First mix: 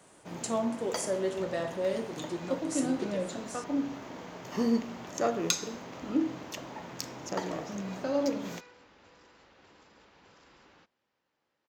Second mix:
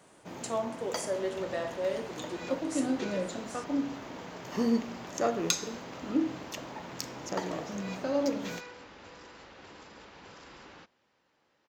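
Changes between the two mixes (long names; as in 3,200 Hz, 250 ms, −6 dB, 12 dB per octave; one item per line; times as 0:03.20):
speech: add bass and treble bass −14 dB, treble −4 dB
second sound +8.5 dB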